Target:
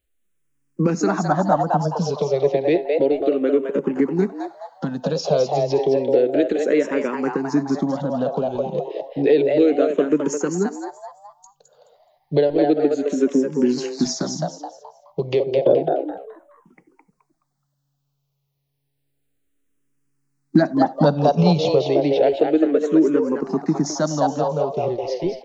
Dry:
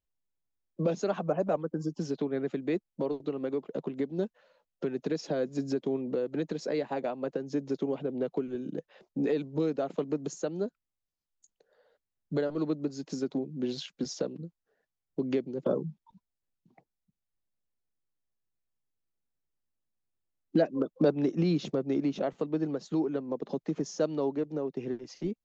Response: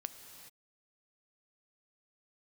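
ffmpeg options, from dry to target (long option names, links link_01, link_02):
-filter_complex "[0:a]asplit=5[link_01][link_02][link_03][link_04][link_05];[link_02]adelay=212,afreqshift=140,volume=-5dB[link_06];[link_03]adelay=424,afreqshift=280,volume=-15.2dB[link_07];[link_04]adelay=636,afreqshift=420,volume=-25.3dB[link_08];[link_05]adelay=848,afreqshift=560,volume=-35.5dB[link_09];[link_01][link_06][link_07][link_08][link_09]amix=inputs=5:normalize=0,asplit=2[link_10][link_11];[1:a]atrim=start_sample=2205,atrim=end_sample=4410[link_12];[link_11][link_12]afir=irnorm=-1:irlink=0,volume=5dB[link_13];[link_10][link_13]amix=inputs=2:normalize=0,asplit=2[link_14][link_15];[link_15]afreqshift=-0.31[link_16];[link_14][link_16]amix=inputs=2:normalize=1,volume=7dB"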